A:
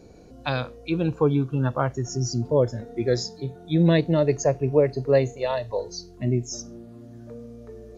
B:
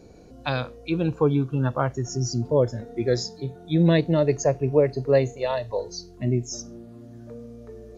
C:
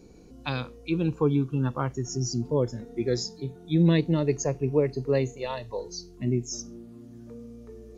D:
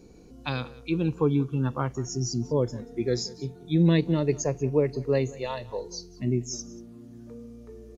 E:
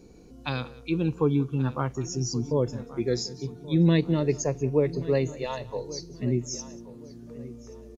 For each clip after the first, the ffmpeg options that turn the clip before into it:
ffmpeg -i in.wav -af anull out.wav
ffmpeg -i in.wav -af "equalizer=frequency=100:width_type=o:width=0.67:gain=-7,equalizer=frequency=630:width_type=o:width=0.67:gain=-11,equalizer=frequency=1600:width_type=o:width=0.67:gain=-6,equalizer=frequency=4000:width_type=o:width=0.67:gain=-3" out.wav
ffmpeg -i in.wav -af "aecho=1:1:186:0.0944" out.wav
ffmpeg -i in.wav -filter_complex "[0:a]asplit=2[link_01][link_02];[link_02]adelay=1129,lowpass=frequency=3500:poles=1,volume=-17dB,asplit=2[link_03][link_04];[link_04]adelay=1129,lowpass=frequency=3500:poles=1,volume=0.3,asplit=2[link_05][link_06];[link_06]adelay=1129,lowpass=frequency=3500:poles=1,volume=0.3[link_07];[link_01][link_03][link_05][link_07]amix=inputs=4:normalize=0" out.wav

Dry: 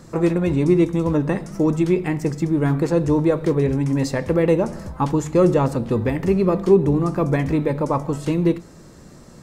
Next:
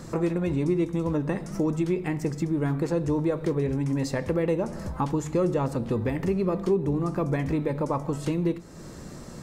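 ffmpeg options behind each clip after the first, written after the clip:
ffmpeg -i in.wav -af "acompressor=threshold=-34dB:ratio=2,volume=3dB" out.wav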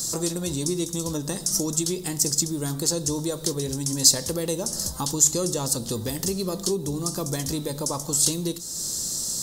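ffmpeg -i in.wav -af "aexciter=amount=14.9:drive=8.1:freq=3700,volume=-3dB" out.wav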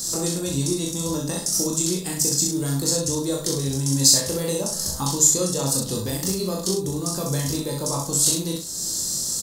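ffmpeg -i in.wav -filter_complex "[0:a]asplit=2[link_01][link_02];[link_02]adelay=37,volume=-4.5dB[link_03];[link_01][link_03]amix=inputs=2:normalize=0,aecho=1:1:22|65:0.596|0.562,volume=-1dB" out.wav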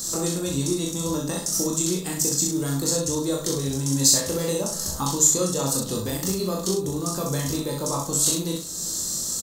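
ffmpeg -i in.wav -af "equalizer=frequency=125:width_type=o:width=0.33:gain=-5,equalizer=frequency=1250:width_type=o:width=0.33:gain=4,equalizer=frequency=5000:width_type=o:width=0.33:gain=-5,equalizer=frequency=10000:width_type=o:width=0.33:gain=-6,aecho=1:1:341:0.0708" out.wav

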